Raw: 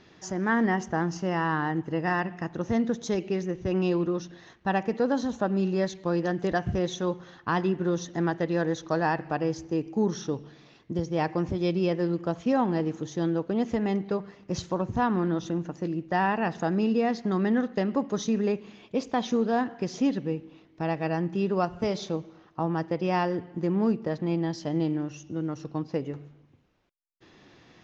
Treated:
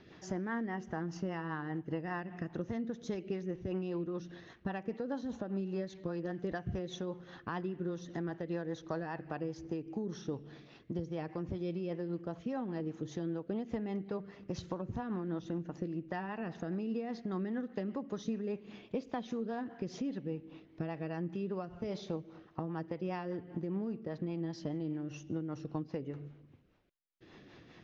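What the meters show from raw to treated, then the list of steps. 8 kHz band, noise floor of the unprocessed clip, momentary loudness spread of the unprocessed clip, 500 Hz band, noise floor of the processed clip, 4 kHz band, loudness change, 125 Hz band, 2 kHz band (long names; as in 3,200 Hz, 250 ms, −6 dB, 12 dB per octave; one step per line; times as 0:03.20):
can't be measured, −57 dBFS, 8 LU, −11.0 dB, −59 dBFS, −12.5 dB, −11.0 dB, −9.5 dB, −13.5 dB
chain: downward compressor 6 to 1, threshold −34 dBFS, peak gain reduction 13 dB
rotating-speaker cabinet horn 5 Hz
high-frequency loss of the air 96 metres
level +1 dB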